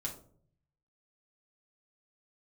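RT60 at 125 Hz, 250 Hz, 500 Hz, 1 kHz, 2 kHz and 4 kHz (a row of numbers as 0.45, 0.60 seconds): 1.1, 0.75, 0.65, 0.45, 0.30, 0.25 seconds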